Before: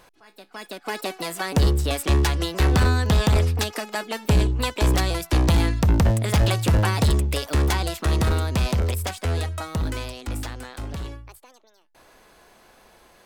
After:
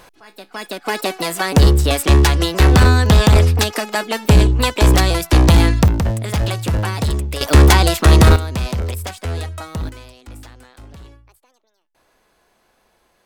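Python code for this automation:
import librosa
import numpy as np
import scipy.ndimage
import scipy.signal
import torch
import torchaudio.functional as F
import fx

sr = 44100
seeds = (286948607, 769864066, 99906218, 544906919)

y = fx.gain(x, sr, db=fx.steps((0.0, 8.0), (5.88, 0.0), (7.41, 12.0), (8.36, 0.5), (9.89, -7.5)))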